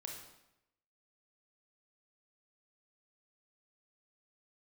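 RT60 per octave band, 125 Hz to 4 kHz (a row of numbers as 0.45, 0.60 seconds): 0.95, 0.90, 0.85, 0.85, 0.80, 0.75 seconds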